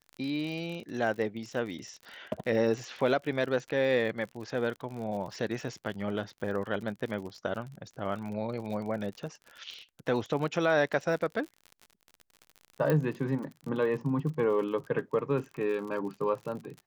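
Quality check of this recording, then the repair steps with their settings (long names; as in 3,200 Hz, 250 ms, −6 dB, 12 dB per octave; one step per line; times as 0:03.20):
surface crackle 52 per second −38 dBFS
0:12.90: click −16 dBFS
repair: click removal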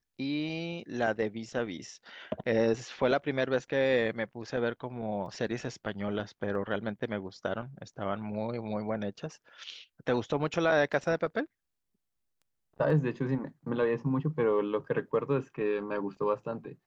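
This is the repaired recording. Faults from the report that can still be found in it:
0:12.90: click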